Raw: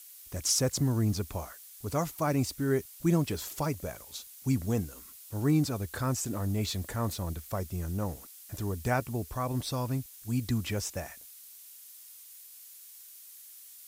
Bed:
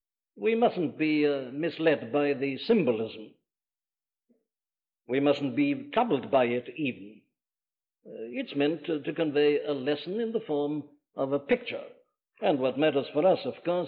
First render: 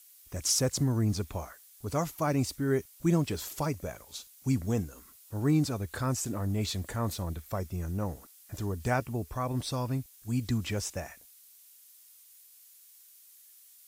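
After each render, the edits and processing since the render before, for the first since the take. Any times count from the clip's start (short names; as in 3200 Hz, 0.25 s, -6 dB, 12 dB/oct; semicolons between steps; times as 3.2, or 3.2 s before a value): noise print and reduce 6 dB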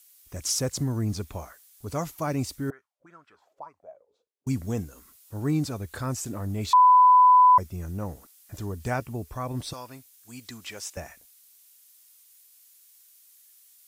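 2.7–4.47 auto-wah 370–1400 Hz, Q 7.9, up, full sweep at -24.5 dBFS; 6.73–7.58 bleep 1000 Hz -12 dBFS; 9.73–10.97 HPF 1000 Hz 6 dB/oct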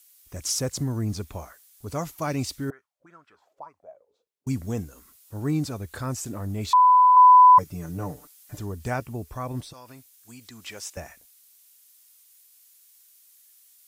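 2.14–2.65 dynamic EQ 3600 Hz, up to +6 dB, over -49 dBFS, Q 0.71; 7.16–8.59 comb 6.8 ms, depth 95%; 9.6–10.61 compressor, threshold -40 dBFS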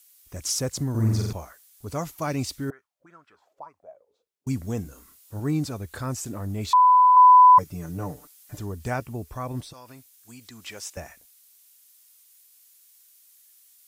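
0.9–1.33 flutter echo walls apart 7.7 m, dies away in 1.2 s; 4.82–5.4 doubler 30 ms -6.5 dB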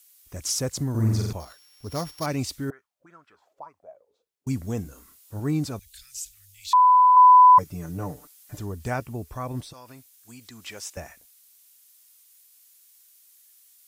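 1.4–2.26 sample sorter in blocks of 8 samples; 5.79–6.72 inverse Chebyshev band-stop 150–930 Hz, stop band 60 dB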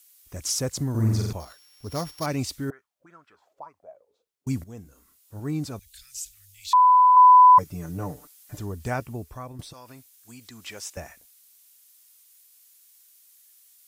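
4.64–6.19 fade in, from -14.5 dB; 8.94–9.59 fade out equal-power, to -12.5 dB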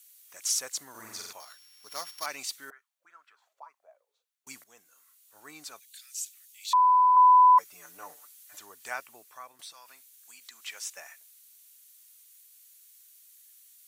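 HPF 1200 Hz 12 dB/oct; notch 5100 Hz, Q 15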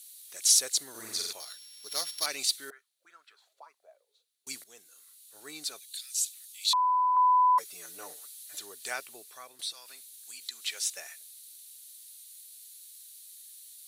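fifteen-band EQ 400 Hz +7 dB, 1000 Hz -6 dB, 4000 Hz +12 dB, 10000 Hz +10 dB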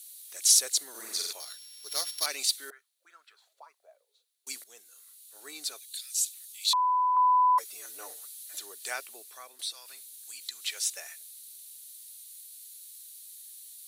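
HPF 330 Hz 12 dB/oct; high shelf 10000 Hz +4 dB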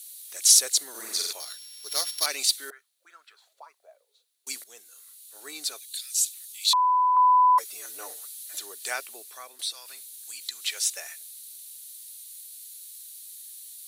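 gain +4 dB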